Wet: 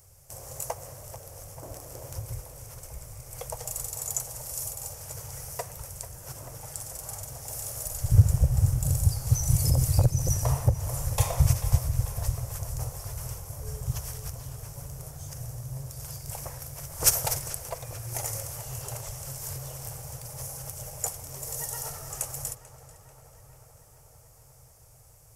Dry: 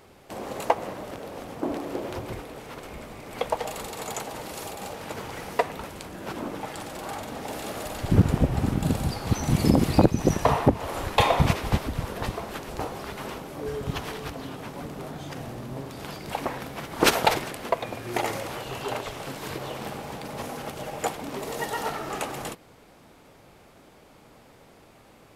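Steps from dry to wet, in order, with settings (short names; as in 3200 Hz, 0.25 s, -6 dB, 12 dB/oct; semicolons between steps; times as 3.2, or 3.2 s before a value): EQ curve 130 Hz 0 dB, 210 Hz -29 dB, 350 Hz -25 dB, 540 Hz -13 dB, 780 Hz -17 dB, 3900 Hz -18 dB, 5600 Hz +2 dB, 9500 Hz +6 dB; on a send: darkening echo 0.44 s, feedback 76%, low-pass 3600 Hz, level -13 dB; on the sum: gain +3.5 dB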